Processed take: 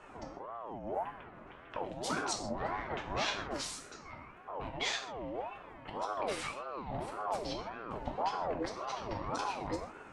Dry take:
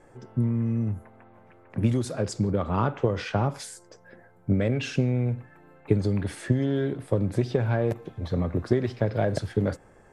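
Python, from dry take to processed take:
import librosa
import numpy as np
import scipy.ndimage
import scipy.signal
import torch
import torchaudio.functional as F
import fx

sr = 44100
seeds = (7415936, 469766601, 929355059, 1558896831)

y = fx.diode_clip(x, sr, knee_db=-23.5)
y = scipy.signal.sosfilt(scipy.signal.butter(2, 5500.0, 'lowpass', fs=sr, output='sos'), y)
y = fx.high_shelf(y, sr, hz=4300.0, db=5.5)
y = fx.hum_notches(y, sr, base_hz=50, count=2)
y = fx.over_compress(y, sr, threshold_db=-34.0, ratio=-1.0)
y = fx.echo_wet_bandpass(y, sr, ms=135, feedback_pct=81, hz=680.0, wet_db=-15.5)
y = fx.rev_gated(y, sr, seeds[0], gate_ms=180, shape='falling', drr_db=1.0)
y = fx.ring_lfo(y, sr, carrier_hz=670.0, swing_pct=40, hz=1.8)
y = y * librosa.db_to_amplitude(-3.5)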